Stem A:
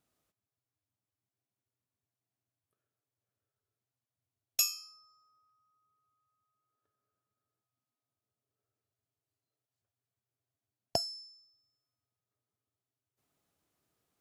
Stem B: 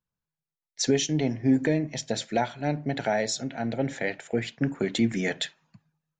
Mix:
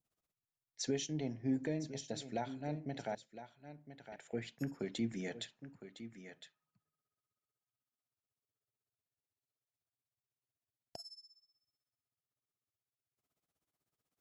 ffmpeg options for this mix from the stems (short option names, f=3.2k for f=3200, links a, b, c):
-filter_complex "[0:a]alimiter=limit=-22dB:level=0:latency=1:release=215,tremolo=f=16:d=0.91,volume=-4.5dB[a];[1:a]volume=-13dB,asplit=3[b][c][d];[b]atrim=end=3.15,asetpts=PTS-STARTPTS,afade=t=out:st=3.146:d=0.004:c=hsin[e];[c]atrim=start=3.15:end=4.12,asetpts=PTS-STARTPTS,volume=0[f];[d]atrim=start=4.12,asetpts=PTS-STARTPTS,afade=t=in:d=0.004:c=hsin[g];[e][f][g]concat=n=3:v=0:a=1,asplit=3[h][i][j];[i]volume=-12.5dB[k];[j]apad=whole_len=626578[l];[a][l]sidechaincompress=threshold=-55dB:ratio=8:attack=9.9:release=416[m];[k]aecho=0:1:1010:1[n];[m][h][n]amix=inputs=3:normalize=0,adynamicequalizer=threshold=0.00126:dfrequency=1800:dqfactor=0.97:tfrequency=1800:tqfactor=0.97:attack=5:release=100:ratio=0.375:range=3:mode=cutabove:tftype=bell"